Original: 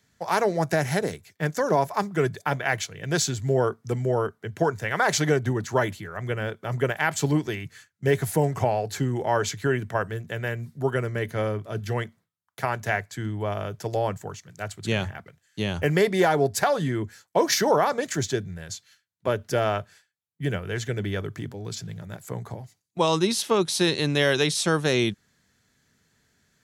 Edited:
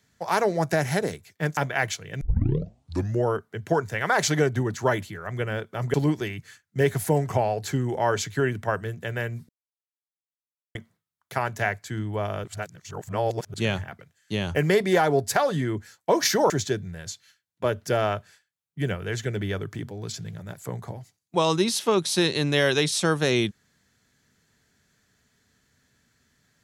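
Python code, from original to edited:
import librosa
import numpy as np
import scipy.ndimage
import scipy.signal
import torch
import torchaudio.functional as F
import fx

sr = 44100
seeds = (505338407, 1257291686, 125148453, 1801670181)

y = fx.edit(x, sr, fx.cut(start_s=1.57, length_s=0.9),
    fx.tape_start(start_s=3.11, length_s=1.03),
    fx.cut(start_s=6.84, length_s=0.37),
    fx.silence(start_s=10.76, length_s=1.26),
    fx.reverse_span(start_s=13.71, length_s=1.1),
    fx.cut(start_s=17.77, length_s=0.36), tone=tone)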